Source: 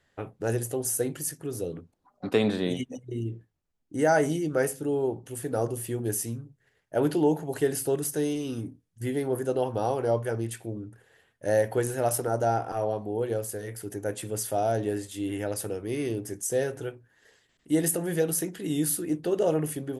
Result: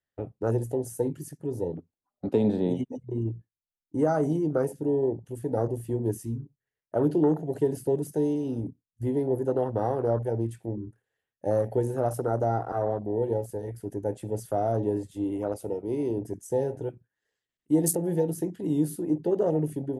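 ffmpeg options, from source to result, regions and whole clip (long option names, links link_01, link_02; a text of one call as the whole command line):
ffmpeg -i in.wav -filter_complex "[0:a]asettb=1/sr,asplit=3[link_01][link_02][link_03];[link_01]atrim=end=15.244[link_04];[link_02]atrim=start=15.24:end=16.17,asetpts=PTS-STARTPTS,afade=type=in:duration=0.004:curve=qsin,afade=type=out:start_time=0.926:duration=0.004:curve=qsin,asuperstop=centerf=1700:order=4:qfactor=3.9,equalizer=frequency=71:width=0.8:gain=-7.5[link_05];[link_03]atrim=start=16.166[link_06];[link_04][link_05]acrossfade=duration=0.004:curve1=hsin:curve2=qsin[link_07];[link_07][link_06]acrossfade=duration=0.004:curve1=qsin:curve2=hsin,acrossover=split=330|3000[link_08][link_09][link_10];[link_09]acompressor=threshold=-27dB:ratio=4[link_11];[link_08][link_11][link_10]amix=inputs=3:normalize=0,agate=range=-8dB:threshold=-50dB:ratio=16:detection=peak,afwtdn=0.0251,volume=2.5dB" out.wav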